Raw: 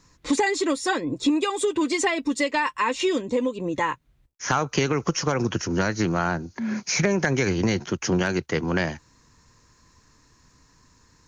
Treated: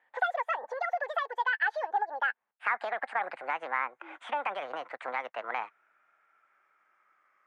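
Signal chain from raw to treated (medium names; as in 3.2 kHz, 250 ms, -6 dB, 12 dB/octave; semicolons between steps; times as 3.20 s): gliding tape speed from 179% -> 123%; Chebyshev band-pass 810–1800 Hz, order 2; trim -2 dB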